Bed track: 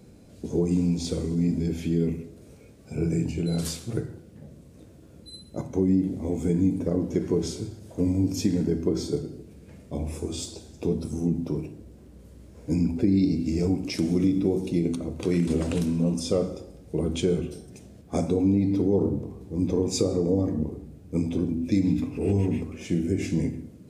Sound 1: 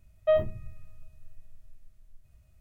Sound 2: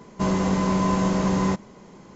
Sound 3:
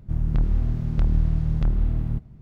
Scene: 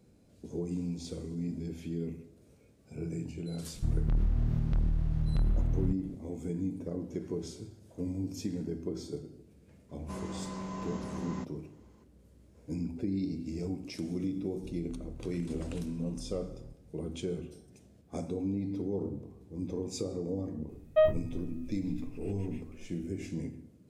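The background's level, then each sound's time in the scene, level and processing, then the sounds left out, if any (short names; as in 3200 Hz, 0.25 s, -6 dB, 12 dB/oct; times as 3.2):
bed track -11.5 dB
3.74 add 3 -1 dB + limiter -20 dBFS
9.89 add 2 -17.5 dB
14.55 add 3 -16 dB + compressor 3:1, threshold -29 dBFS
20.69 add 1 -0.5 dB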